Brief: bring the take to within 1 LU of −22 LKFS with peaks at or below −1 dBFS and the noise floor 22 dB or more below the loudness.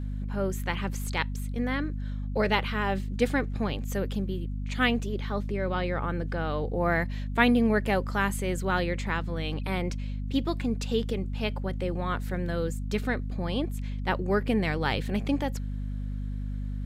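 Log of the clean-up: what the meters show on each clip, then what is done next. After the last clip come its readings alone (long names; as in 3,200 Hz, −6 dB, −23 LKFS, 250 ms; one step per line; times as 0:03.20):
mains hum 50 Hz; hum harmonics up to 250 Hz; level of the hum −30 dBFS; integrated loudness −29.5 LKFS; sample peak −8.0 dBFS; target loudness −22.0 LKFS
→ hum removal 50 Hz, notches 5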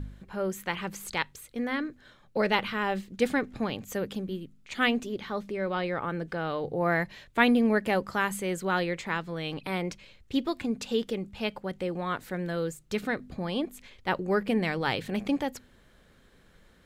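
mains hum none found; integrated loudness −30.5 LKFS; sample peak −8.5 dBFS; target loudness −22.0 LKFS
→ level +8.5 dB
brickwall limiter −1 dBFS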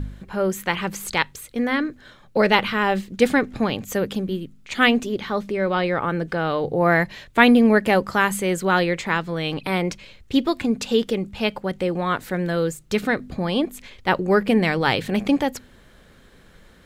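integrated loudness −22.0 LKFS; sample peak −1.0 dBFS; background noise floor −51 dBFS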